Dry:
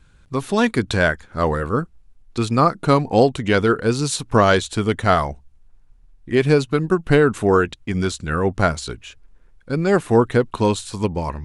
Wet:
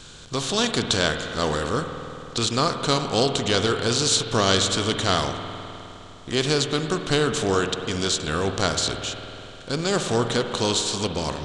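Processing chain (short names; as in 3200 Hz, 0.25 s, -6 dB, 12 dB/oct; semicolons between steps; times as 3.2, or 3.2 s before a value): per-bin compression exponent 0.6; band shelf 4800 Hz +14 dB; spring tank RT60 3.3 s, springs 51 ms, chirp 80 ms, DRR 6 dB; gain -10 dB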